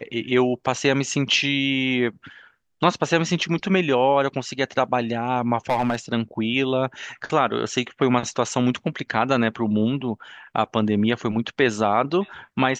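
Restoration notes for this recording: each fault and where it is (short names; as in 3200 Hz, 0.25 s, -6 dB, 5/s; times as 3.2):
5.7–5.96 clipped -16 dBFS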